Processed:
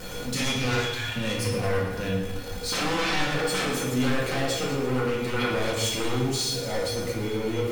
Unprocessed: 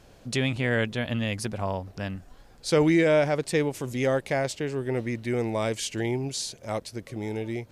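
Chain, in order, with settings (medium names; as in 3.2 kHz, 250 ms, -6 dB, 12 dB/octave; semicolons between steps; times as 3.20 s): jump at every zero crossing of -35.5 dBFS; 0.73–1.16 s: inverse Chebyshev band-stop 190–470 Hz, stop band 50 dB; feedback comb 480 Hz, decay 0.28 s, harmonics odd, mix 90%; sine folder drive 19 dB, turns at -22 dBFS; thinning echo 112 ms, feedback 59%, level -12 dB; simulated room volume 490 m³, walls mixed, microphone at 2 m; trim -6.5 dB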